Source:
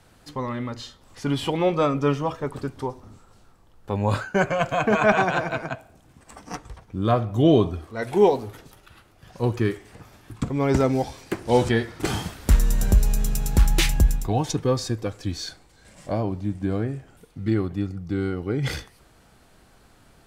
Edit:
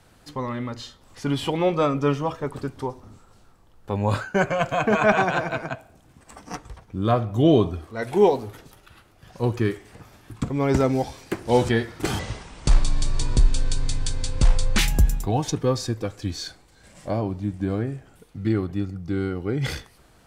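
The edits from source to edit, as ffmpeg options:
ffmpeg -i in.wav -filter_complex "[0:a]asplit=3[link_01][link_02][link_03];[link_01]atrim=end=12.194[link_04];[link_02]atrim=start=12.19:end=13.8,asetpts=PTS-STARTPTS,asetrate=27342,aresample=44100[link_05];[link_03]atrim=start=13.796[link_06];[link_04][link_05]acrossfade=duration=0.004:curve1=hsin:curve2=hsin[link_07];[link_07][link_06]acrossfade=duration=0.004:curve1=hsin:curve2=hsin" out.wav

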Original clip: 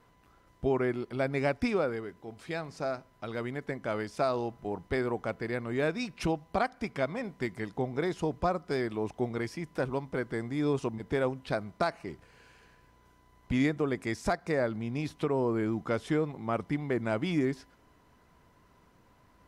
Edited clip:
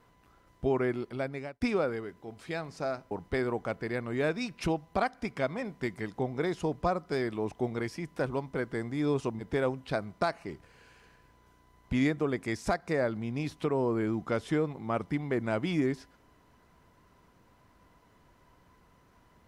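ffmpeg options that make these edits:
ffmpeg -i in.wav -filter_complex "[0:a]asplit=3[link_01][link_02][link_03];[link_01]atrim=end=1.61,asetpts=PTS-STARTPTS,afade=type=out:start_time=1.03:duration=0.58[link_04];[link_02]atrim=start=1.61:end=3.112,asetpts=PTS-STARTPTS,afade=type=in:duration=0.004:curve=hsin[link_05];[link_03]atrim=start=4.698[link_06];[link_04][link_05]concat=n=2:v=0:a=1[link_07];[link_07][link_06]acrossfade=duration=0.004:curve1=hsin:curve2=hsin" out.wav

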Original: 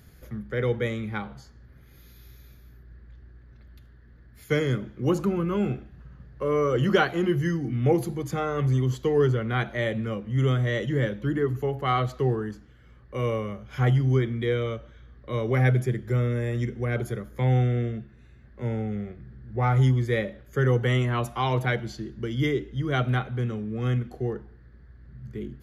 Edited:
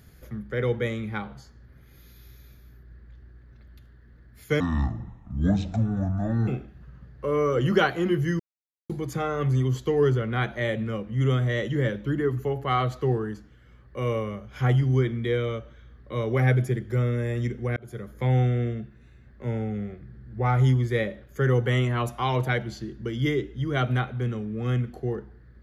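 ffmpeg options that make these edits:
ffmpeg -i in.wav -filter_complex "[0:a]asplit=6[link_01][link_02][link_03][link_04][link_05][link_06];[link_01]atrim=end=4.604[link_07];[link_02]atrim=start=4.6:end=5.65,asetpts=PTS-STARTPTS,asetrate=24696,aresample=44100,atrim=end_sample=82687,asetpts=PTS-STARTPTS[link_08];[link_03]atrim=start=5.646:end=7.57,asetpts=PTS-STARTPTS,afade=type=out:start_time=1.92:duration=0.004:curve=hsin[link_09];[link_04]atrim=start=7.57:end=8.07,asetpts=PTS-STARTPTS,volume=0[link_10];[link_05]atrim=start=8.07:end=16.94,asetpts=PTS-STARTPTS,afade=type=in:duration=0.004:curve=hsin,afade=type=out:start_time=8.866:duration=0.004:curve=hsin[link_11];[link_06]atrim=start=16.94,asetpts=PTS-STARTPTS,afade=type=in:duration=0.36[link_12];[link_07][link_08]acrossfade=duration=0.004:curve1=hsin:curve2=hsin[link_13];[link_09][link_10][link_11][link_12]concat=n=4:v=0:a=1[link_14];[link_13][link_14]acrossfade=duration=0.004:curve1=hsin:curve2=hsin" out.wav

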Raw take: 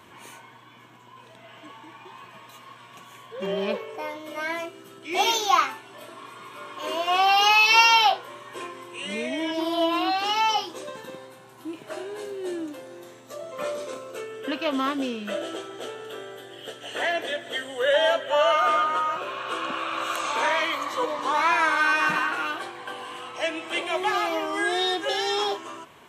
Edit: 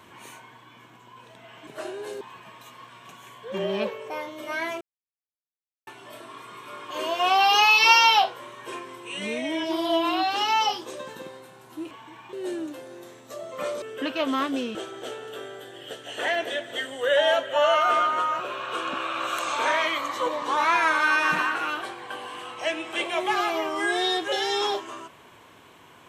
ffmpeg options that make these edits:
ffmpeg -i in.wav -filter_complex "[0:a]asplit=9[link_01][link_02][link_03][link_04][link_05][link_06][link_07][link_08][link_09];[link_01]atrim=end=1.672[link_10];[link_02]atrim=start=11.788:end=12.332[link_11];[link_03]atrim=start=2.088:end=4.69,asetpts=PTS-STARTPTS,afade=type=out:start_time=2.598:duration=0.004:curve=hsin[link_12];[link_04]atrim=start=4.69:end=5.75,asetpts=PTS-STARTPTS,volume=0[link_13];[link_05]atrim=start=5.75:end=11.792,asetpts=PTS-STARTPTS,afade=type=in:duration=0.004:curve=hsin[link_14];[link_06]atrim=start=1.668:end=2.092[link_15];[link_07]atrim=start=12.328:end=13.822[link_16];[link_08]atrim=start=14.278:end=15.212[link_17];[link_09]atrim=start=15.518[link_18];[link_10][link_11]acrossfade=duration=0.004:curve1=hsin:curve2=hsin[link_19];[link_12][link_13][link_14]concat=n=3:v=0:a=1[link_20];[link_19][link_20]acrossfade=duration=0.004:curve1=hsin:curve2=hsin[link_21];[link_21][link_15]acrossfade=duration=0.004:curve1=hsin:curve2=hsin[link_22];[link_22][link_16]acrossfade=duration=0.004:curve1=hsin:curve2=hsin[link_23];[link_23][link_17]acrossfade=duration=0.004:curve1=hsin:curve2=hsin[link_24];[link_24][link_18]acrossfade=duration=0.004:curve1=hsin:curve2=hsin" out.wav

